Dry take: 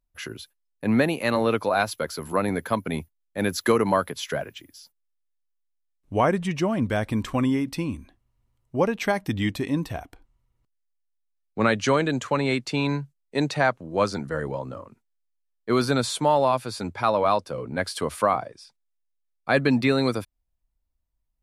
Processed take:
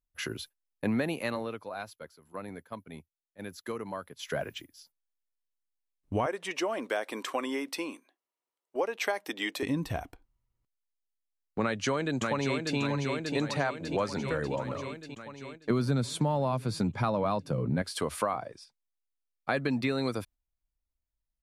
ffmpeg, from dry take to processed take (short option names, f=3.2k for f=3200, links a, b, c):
-filter_complex "[0:a]asettb=1/sr,asplit=3[a][b][c];[a]atrim=end=6.264[d];[b]atrim=start=6.26:end=9.63,asetpts=PTS-STARTPTS,afade=t=in:d=0.004:c=qsin,afade=t=out:st=3.366:d=0.004:c=qsin,highpass=f=370:w=0.5412,highpass=f=370:w=1.3066[e];[c]atrim=start=9.626[f];[d][e]acrossfade=d=0.004:c1=hsin:c2=qsin[g];[g][f]acrossfade=d=0.004:c1=qsin:c2=hsin,asplit=2[h][i];[i]afade=t=in:st=11.62:d=0.01,afade=t=out:st=12.78:d=0.01,aecho=0:1:590|1180|1770|2360|2950|3540|4130|4720|5310:0.446684|0.290344|0.188724|0.12267|0.0797358|0.0518283|0.0336884|0.0218974|0.0142333[j];[h][j]amix=inputs=2:normalize=0,asettb=1/sr,asplit=3[k][l][m];[k]atrim=end=15.704[n];[l]atrim=start=15.7:end=17.82,asetpts=PTS-STARTPTS,afade=t=in:d=0.004:c=qsin,afade=t=out:st=2.116:d=0.004:c=qsin,equalizer=f=150:t=o:w=1.8:g=14.5[o];[m]atrim=start=17.816[p];[n][o]acrossfade=d=0.004:c1=hsin:c2=qsin[q];[q][p]acrossfade=d=0.004:c1=qsin:c2=hsin,asplit=3[r][s][t];[r]atrim=end=1.59,asetpts=PTS-STARTPTS,afade=t=out:st=1.11:d=0.48:c=qua:silence=0.149624[u];[s]atrim=start=1.59:end=3.98,asetpts=PTS-STARTPTS,volume=-16.5dB[v];[t]atrim=start=3.98,asetpts=PTS-STARTPTS,afade=t=in:d=0.48:c=qua:silence=0.149624[w];[u][v][w]concat=n=3:v=0:a=1,agate=range=-9dB:threshold=-45dB:ratio=16:detection=peak,acompressor=threshold=-27dB:ratio=4"